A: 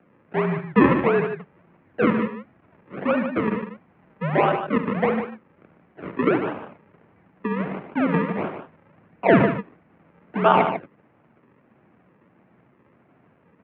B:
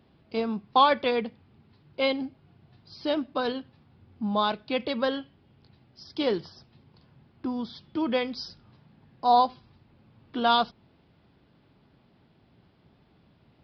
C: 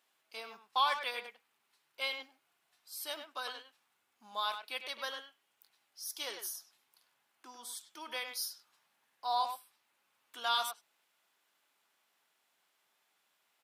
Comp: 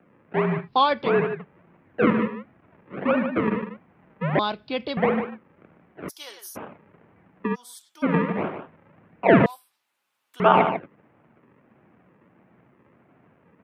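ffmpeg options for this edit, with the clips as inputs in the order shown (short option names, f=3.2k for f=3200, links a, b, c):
-filter_complex "[1:a]asplit=2[a][b];[2:a]asplit=3[c][d][e];[0:a]asplit=6[f][g][h][i][j][k];[f]atrim=end=0.69[l];[a]atrim=start=0.59:end=1.12[m];[g]atrim=start=1.02:end=4.392[n];[b]atrim=start=4.388:end=4.972[o];[h]atrim=start=4.968:end=6.1[p];[c]atrim=start=6.08:end=6.57[q];[i]atrim=start=6.55:end=7.56[r];[d]atrim=start=7.54:end=8.04[s];[j]atrim=start=8.02:end=9.462[t];[e]atrim=start=9.458:end=10.402[u];[k]atrim=start=10.398[v];[l][m]acrossfade=d=0.1:c1=tri:c2=tri[w];[w][n]acrossfade=d=0.1:c1=tri:c2=tri[x];[x][o]acrossfade=d=0.004:c1=hsin:c2=hsin[y];[y][p]acrossfade=d=0.004:c1=hsin:c2=hsin[z];[z][q]acrossfade=d=0.02:c1=tri:c2=tri[aa];[aa][r]acrossfade=d=0.02:c1=tri:c2=tri[ab];[ab][s]acrossfade=d=0.02:c1=tri:c2=tri[ac];[ac][t]acrossfade=d=0.02:c1=tri:c2=tri[ad];[ad][u]acrossfade=d=0.004:c1=hsin:c2=hsin[ae];[ae][v]acrossfade=d=0.004:c1=hsin:c2=hsin"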